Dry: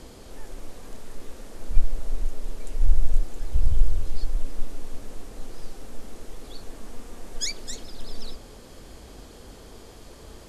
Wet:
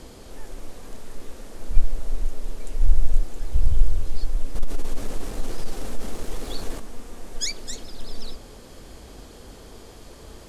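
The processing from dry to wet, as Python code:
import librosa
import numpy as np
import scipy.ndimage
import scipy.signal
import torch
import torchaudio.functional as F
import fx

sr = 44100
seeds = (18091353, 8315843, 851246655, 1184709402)

y = fx.leveller(x, sr, passes=2, at=(4.55, 6.8))
y = F.gain(torch.from_numpy(y), 1.5).numpy()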